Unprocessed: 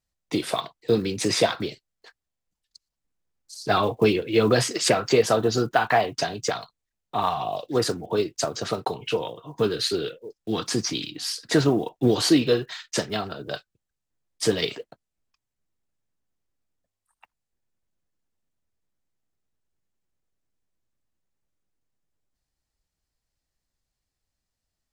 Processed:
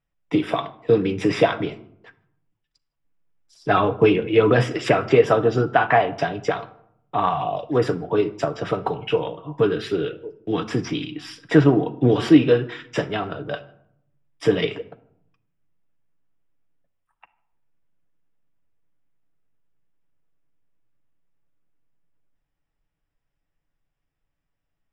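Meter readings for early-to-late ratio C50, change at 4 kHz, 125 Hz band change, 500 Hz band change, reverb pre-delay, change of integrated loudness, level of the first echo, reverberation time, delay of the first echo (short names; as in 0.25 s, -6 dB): 17.0 dB, -5.5 dB, +5.5 dB, +4.0 dB, 6 ms, +3.5 dB, none, 0.70 s, none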